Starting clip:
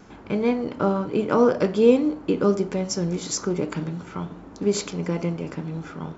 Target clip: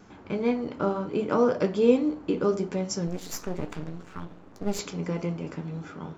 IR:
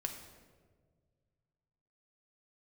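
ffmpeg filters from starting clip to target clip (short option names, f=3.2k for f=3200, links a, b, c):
-filter_complex "[0:a]asettb=1/sr,asplit=3[a][b][c];[a]atrim=end=3.074[d];[b]atrim=start=3.07:end=4.79,asetpts=PTS-STARTPTS,afade=t=in:d=0.004:c=qsin,afade=t=out:st=1.716:d=0.004:c=qsin,aeval=exprs='max(val(0),0)':c=same[e];[c]atrim=start=4.786[f];[d][e]acrossfade=d=0.004:c1=hsin:c2=qsin[g];[g][f]acrossfade=d=0.004:c1=qsin:c2=hsin,flanger=delay=9.5:depth=4.5:regen=-56:speed=0.67:shape=triangular"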